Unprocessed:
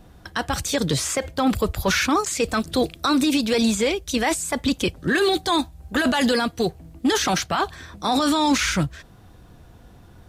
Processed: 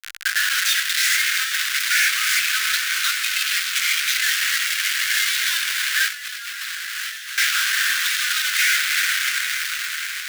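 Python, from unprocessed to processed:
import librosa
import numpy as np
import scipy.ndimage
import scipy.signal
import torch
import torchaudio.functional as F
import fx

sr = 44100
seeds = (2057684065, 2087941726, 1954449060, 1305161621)

p1 = fx.peak_eq(x, sr, hz=8100.0, db=-13.0, octaves=1.5)
p2 = 10.0 ** (-25.0 / 20.0) * np.tanh(p1 / 10.0 ** (-25.0 / 20.0))
p3 = p1 + (p2 * librosa.db_to_amplitude(-3.5))
p4 = fx.sample_hold(p3, sr, seeds[0], rate_hz=2500.0, jitter_pct=0, at=(4.15, 5.25))
p5 = fx.peak_eq(p4, sr, hz=2000.0, db=9.0, octaves=0.64)
p6 = fx.rev_double_slope(p5, sr, seeds[1], early_s=0.27, late_s=3.3, knee_db=-17, drr_db=-2.0)
p7 = fx.schmitt(p6, sr, flips_db=-34.5)
p8 = scipy.signal.sosfilt(scipy.signal.ellip(4, 1.0, 50, 1500.0, 'highpass', fs=sr, output='sos'), p7)
p9 = p8 + fx.echo_diffused(p8, sr, ms=835, feedback_pct=47, wet_db=-8.5, dry=0)
y = fx.over_compress(p9, sr, threshold_db=-31.0, ratio=-1.0, at=(6.08, 7.38))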